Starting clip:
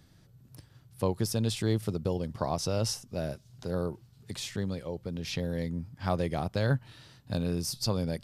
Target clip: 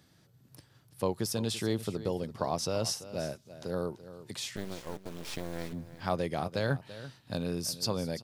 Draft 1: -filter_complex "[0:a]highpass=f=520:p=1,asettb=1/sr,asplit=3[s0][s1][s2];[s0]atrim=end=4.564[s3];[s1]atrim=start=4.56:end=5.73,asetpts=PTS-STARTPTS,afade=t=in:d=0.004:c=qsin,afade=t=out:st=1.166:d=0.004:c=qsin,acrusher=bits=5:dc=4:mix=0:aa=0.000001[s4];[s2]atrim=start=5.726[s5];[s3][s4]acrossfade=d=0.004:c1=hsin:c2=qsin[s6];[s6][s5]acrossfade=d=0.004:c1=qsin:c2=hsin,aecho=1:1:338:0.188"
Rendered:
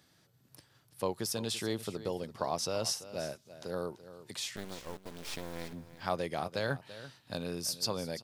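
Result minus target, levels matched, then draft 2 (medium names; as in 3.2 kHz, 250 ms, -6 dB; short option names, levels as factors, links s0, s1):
250 Hz band -3.0 dB
-filter_complex "[0:a]highpass=f=210:p=1,asettb=1/sr,asplit=3[s0][s1][s2];[s0]atrim=end=4.564[s3];[s1]atrim=start=4.56:end=5.73,asetpts=PTS-STARTPTS,afade=t=in:d=0.004:c=qsin,afade=t=out:st=1.166:d=0.004:c=qsin,acrusher=bits=5:dc=4:mix=0:aa=0.000001[s4];[s2]atrim=start=5.726[s5];[s3][s4]acrossfade=d=0.004:c1=hsin:c2=qsin[s6];[s6][s5]acrossfade=d=0.004:c1=qsin:c2=hsin,aecho=1:1:338:0.188"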